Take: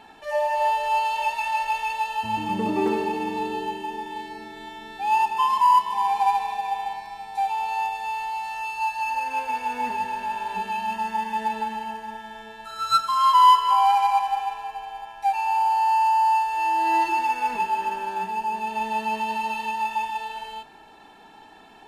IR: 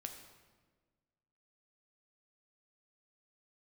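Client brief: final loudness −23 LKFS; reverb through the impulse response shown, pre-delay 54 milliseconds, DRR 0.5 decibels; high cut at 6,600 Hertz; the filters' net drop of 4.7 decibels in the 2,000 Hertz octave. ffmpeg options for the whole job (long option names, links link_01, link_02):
-filter_complex "[0:a]lowpass=6600,equalizer=frequency=2000:width_type=o:gain=-7,asplit=2[link_01][link_02];[1:a]atrim=start_sample=2205,adelay=54[link_03];[link_02][link_03]afir=irnorm=-1:irlink=0,volume=3dB[link_04];[link_01][link_04]amix=inputs=2:normalize=0,volume=-1.5dB"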